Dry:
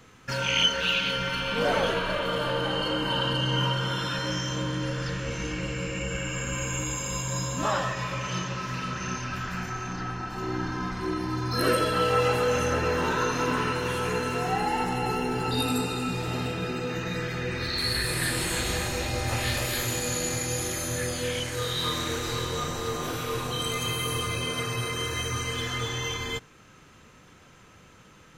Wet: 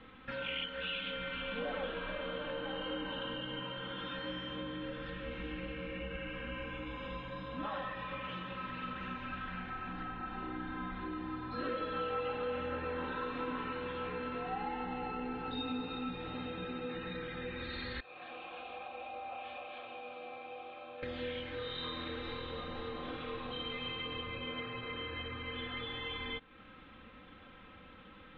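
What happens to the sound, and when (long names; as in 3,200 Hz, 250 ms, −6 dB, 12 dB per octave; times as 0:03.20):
0:18.00–0:21.03: formant filter a
0:24.21–0:25.77: high-frequency loss of the air 140 metres
whole clip: Chebyshev low-pass filter 3,700 Hz, order 5; downward compressor 2.5 to 1, threshold −41 dBFS; comb filter 3.8 ms, depth 66%; level −2.5 dB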